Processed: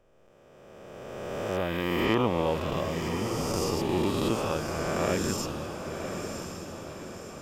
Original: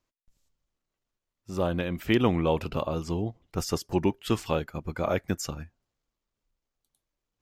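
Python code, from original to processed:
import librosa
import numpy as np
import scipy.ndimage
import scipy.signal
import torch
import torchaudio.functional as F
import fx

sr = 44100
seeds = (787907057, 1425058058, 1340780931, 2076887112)

y = fx.spec_swells(x, sr, rise_s=2.44)
y = fx.echo_diffused(y, sr, ms=1075, feedback_pct=51, wet_db=-7.0)
y = F.gain(torch.from_numpy(y), -5.5).numpy()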